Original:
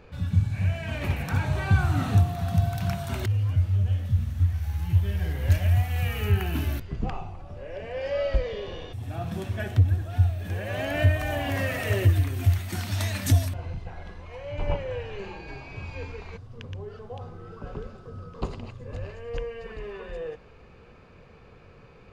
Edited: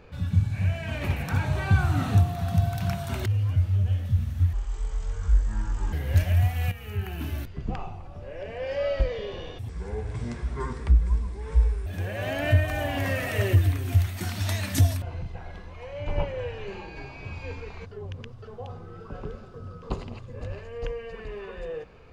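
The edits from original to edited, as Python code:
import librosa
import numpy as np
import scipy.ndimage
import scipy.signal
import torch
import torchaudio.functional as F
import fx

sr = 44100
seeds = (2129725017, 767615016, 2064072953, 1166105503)

y = fx.edit(x, sr, fx.speed_span(start_s=4.53, length_s=0.74, speed=0.53),
    fx.fade_in_from(start_s=6.06, length_s=1.72, curve='qsin', floor_db=-13.0),
    fx.speed_span(start_s=9.03, length_s=1.35, speed=0.62),
    fx.reverse_span(start_s=16.43, length_s=0.51), tone=tone)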